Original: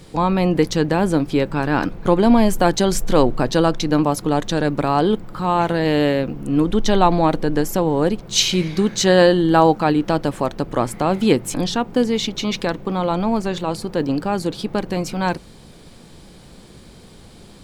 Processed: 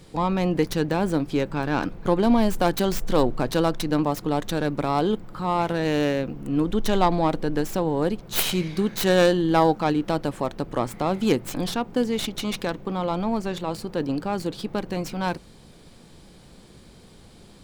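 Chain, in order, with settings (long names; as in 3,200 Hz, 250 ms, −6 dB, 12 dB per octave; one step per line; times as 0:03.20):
stylus tracing distortion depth 0.25 ms
level −5.5 dB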